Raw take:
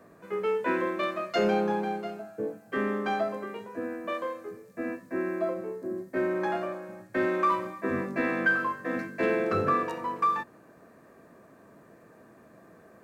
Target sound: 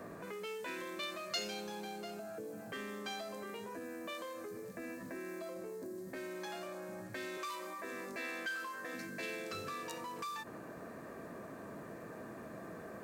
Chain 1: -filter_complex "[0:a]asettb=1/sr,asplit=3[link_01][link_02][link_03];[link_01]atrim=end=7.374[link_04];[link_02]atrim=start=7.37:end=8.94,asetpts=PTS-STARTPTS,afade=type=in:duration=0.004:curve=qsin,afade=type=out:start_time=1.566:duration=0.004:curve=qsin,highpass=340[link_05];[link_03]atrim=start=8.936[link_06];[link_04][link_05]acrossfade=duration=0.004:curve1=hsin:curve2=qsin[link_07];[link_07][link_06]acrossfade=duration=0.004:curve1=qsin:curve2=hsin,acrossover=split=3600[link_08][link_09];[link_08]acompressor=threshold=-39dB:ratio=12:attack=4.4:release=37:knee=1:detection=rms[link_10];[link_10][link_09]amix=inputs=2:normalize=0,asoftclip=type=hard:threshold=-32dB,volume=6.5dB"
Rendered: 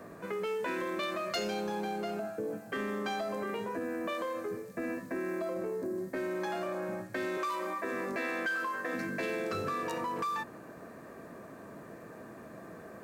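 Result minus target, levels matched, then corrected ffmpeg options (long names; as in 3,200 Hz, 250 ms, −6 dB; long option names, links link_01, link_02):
downward compressor: peak gain reduction −9.5 dB
-filter_complex "[0:a]asettb=1/sr,asplit=3[link_01][link_02][link_03];[link_01]atrim=end=7.374[link_04];[link_02]atrim=start=7.37:end=8.94,asetpts=PTS-STARTPTS,afade=type=in:duration=0.004:curve=qsin,afade=type=out:start_time=1.566:duration=0.004:curve=qsin,highpass=340[link_05];[link_03]atrim=start=8.936[link_06];[link_04][link_05]acrossfade=duration=0.004:curve1=hsin:curve2=qsin[link_07];[link_07][link_06]acrossfade=duration=0.004:curve1=qsin:curve2=hsin,acrossover=split=3600[link_08][link_09];[link_08]acompressor=threshold=-49.5dB:ratio=12:attack=4.4:release=37:knee=1:detection=rms[link_10];[link_10][link_09]amix=inputs=2:normalize=0,asoftclip=type=hard:threshold=-32dB,volume=6.5dB"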